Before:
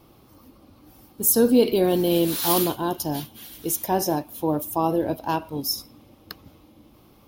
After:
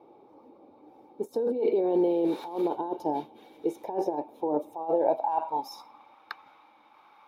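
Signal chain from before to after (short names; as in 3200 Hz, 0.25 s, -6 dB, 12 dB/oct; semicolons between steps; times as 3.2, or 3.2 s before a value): low shelf 160 Hz -11.5 dB; small resonant body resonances 860/2300/3700 Hz, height 15 dB, ringing for 30 ms; negative-ratio compressor -24 dBFS, ratio -1; band-pass sweep 430 Hz -> 1400 Hz, 4.58–6.25; gain +2.5 dB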